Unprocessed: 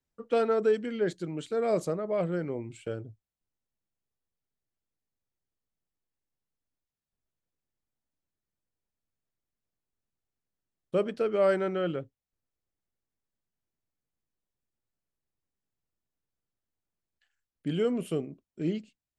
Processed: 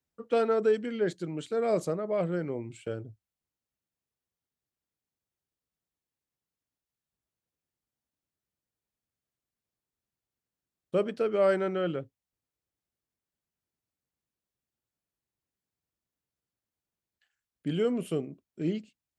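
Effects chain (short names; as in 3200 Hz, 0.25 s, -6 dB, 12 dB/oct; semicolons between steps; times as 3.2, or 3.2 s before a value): HPF 51 Hz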